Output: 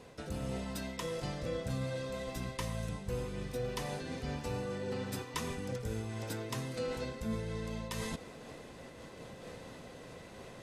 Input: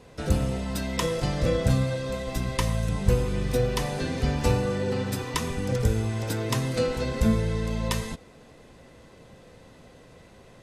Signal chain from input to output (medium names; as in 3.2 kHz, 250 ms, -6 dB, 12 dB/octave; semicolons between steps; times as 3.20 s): bass shelf 95 Hz -8 dB; reverse; compression 4:1, threshold -40 dBFS, peak gain reduction 18 dB; reverse; random flutter of the level, depth 55%; trim +5 dB